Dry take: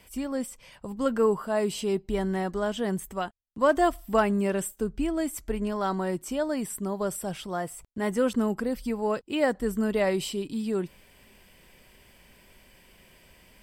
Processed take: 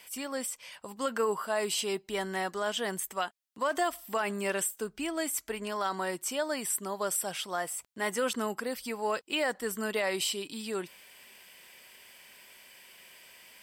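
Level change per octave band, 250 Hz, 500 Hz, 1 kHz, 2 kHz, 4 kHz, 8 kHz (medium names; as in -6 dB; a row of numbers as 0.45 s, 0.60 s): -10.5 dB, -6.0 dB, -2.5 dB, +1.0 dB, +4.5 dB, +5.0 dB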